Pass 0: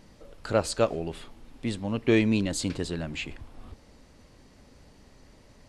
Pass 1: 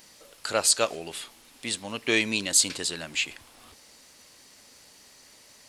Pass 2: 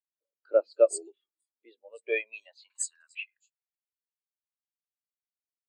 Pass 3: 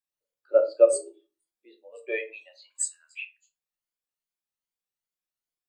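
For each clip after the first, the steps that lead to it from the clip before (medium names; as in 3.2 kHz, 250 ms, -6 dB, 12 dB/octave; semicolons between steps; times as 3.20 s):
tilt EQ +4.5 dB/octave; trim +1 dB
high-pass sweep 320 Hz -> 2.9 kHz, 1.39–4.20 s; three bands offset in time mids, lows, highs 110/250 ms, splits 170/4400 Hz; spectral contrast expander 2.5:1
drifting ripple filter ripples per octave 1.8, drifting +2.5 Hz, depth 7 dB; simulated room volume 140 m³, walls furnished, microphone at 0.94 m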